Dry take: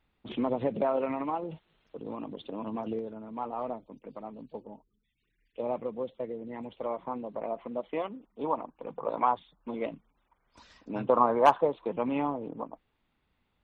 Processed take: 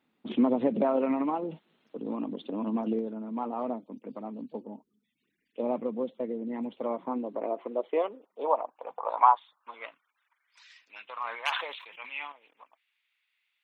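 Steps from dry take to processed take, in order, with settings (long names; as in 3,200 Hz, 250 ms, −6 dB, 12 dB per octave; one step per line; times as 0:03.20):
high-pass filter sweep 230 Hz → 2,300 Hz, 0:06.96–0:10.80
0:11.16–0:12.32: level that may fall only so fast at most 60 dB per second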